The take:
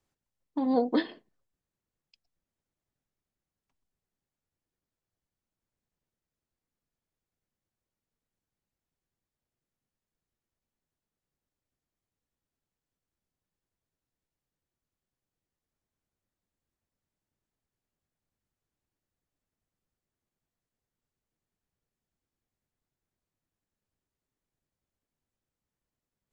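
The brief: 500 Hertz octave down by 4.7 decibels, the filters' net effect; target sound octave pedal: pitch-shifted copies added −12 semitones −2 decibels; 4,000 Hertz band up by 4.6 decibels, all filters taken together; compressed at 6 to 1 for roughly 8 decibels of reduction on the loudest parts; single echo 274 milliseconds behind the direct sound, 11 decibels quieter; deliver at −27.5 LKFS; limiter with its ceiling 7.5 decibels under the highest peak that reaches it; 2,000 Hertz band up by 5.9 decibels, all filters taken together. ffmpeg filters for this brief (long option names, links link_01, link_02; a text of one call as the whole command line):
ffmpeg -i in.wav -filter_complex "[0:a]equalizer=frequency=500:width_type=o:gain=-5.5,equalizer=frequency=2000:width_type=o:gain=6.5,equalizer=frequency=4000:width_type=o:gain=3.5,acompressor=threshold=-31dB:ratio=6,alimiter=level_in=6.5dB:limit=-24dB:level=0:latency=1,volume=-6.5dB,aecho=1:1:274:0.282,asplit=2[link_01][link_02];[link_02]asetrate=22050,aresample=44100,atempo=2,volume=-2dB[link_03];[link_01][link_03]amix=inputs=2:normalize=0,volume=12.5dB" out.wav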